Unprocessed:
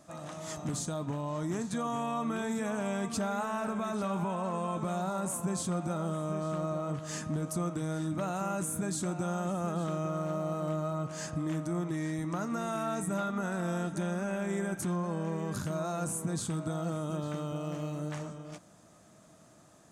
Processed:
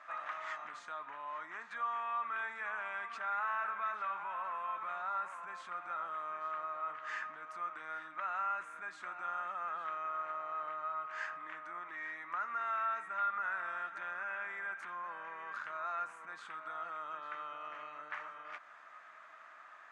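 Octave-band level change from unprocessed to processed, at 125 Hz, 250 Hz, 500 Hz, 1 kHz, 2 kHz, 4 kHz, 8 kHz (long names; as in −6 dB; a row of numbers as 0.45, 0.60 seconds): below −40 dB, −32.5 dB, −16.0 dB, +0.5 dB, +4.5 dB, −11.0 dB, below −25 dB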